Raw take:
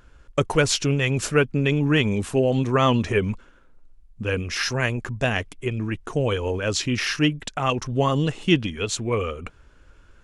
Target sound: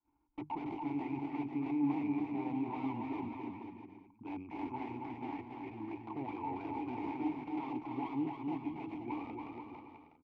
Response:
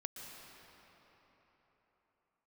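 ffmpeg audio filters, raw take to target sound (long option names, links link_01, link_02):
-filter_complex "[0:a]bandreject=frequency=2000:width=13,agate=range=-33dB:threshold=-46dB:ratio=3:detection=peak,lowshelf=frequency=710:width_type=q:width=1.5:gain=-13.5,bandreject=frequency=50:width_type=h:width=6,bandreject=frequency=100:width_type=h:width=6,bandreject=frequency=150:width_type=h:width=6,bandreject=frequency=200:width_type=h:width=6,aeval=exprs='(tanh(28.2*val(0)+0.25)-tanh(0.25))/28.2':channel_layout=same,acrossover=split=160[link_01][link_02];[link_02]aeval=exprs='(mod(29.9*val(0)+1,2)-1)/29.9':channel_layout=same[link_03];[link_01][link_03]amix=inputs=2:normalize=0,equalizer=frequency=200:width_type=o:width=0.33:gain=-8,equalizer=frequency=630:width_type=o:width=0.33:gain=8,equalizer=frequency=1250:width_type=o:width=0.33:gain=-8,adynamicsmooth=sensitivity=2:basefreq=560,asplit=3[link_04][link_05][link_06];[link_04]bandpass=frequency=300:width_type=q:width=8,volume=0dB[link_07];[link_05]bandpass=frequency=870:width_type=q:width=8,volume=-6dB[link_08];[link_06]bandpass=frequency=2240:width_type=q:width=8,volume=-9dB[link_09];[link_07][link_08][link_09]amix=inputs=3:normalize=0,aecho=1:1:280|490|647.5|765.6|854.2:0.631|0.398|0.251|0.158|0.1,volume=13.5dB"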